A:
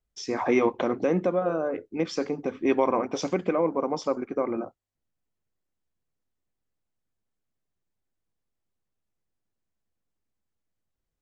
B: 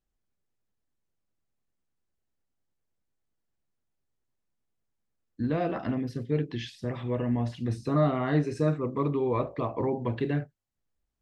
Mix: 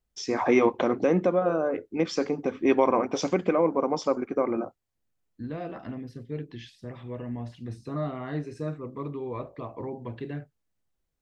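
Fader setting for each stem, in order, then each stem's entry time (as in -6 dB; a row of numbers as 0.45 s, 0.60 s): +1.5 dB, -7.0 dB; 0.00 s, 0.00 s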